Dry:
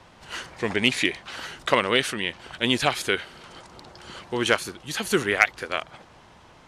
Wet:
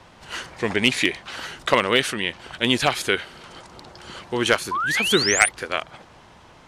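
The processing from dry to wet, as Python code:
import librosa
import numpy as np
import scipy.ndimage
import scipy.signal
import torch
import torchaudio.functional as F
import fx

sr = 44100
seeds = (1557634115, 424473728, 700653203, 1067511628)

y = np.clip(x, -10.0 ** (-7.0 / 20.0), 10.0 ** (-7.0 / 20.0))
y = fx.spec_paint(y, sr, seeds[0], shape='rise', start_s=4.71, length_s=0.78, low_hz=960.0, high_hz=10000.0, level_db=-26.0)
y = y * 10.0 ** (2.5 / 20.0)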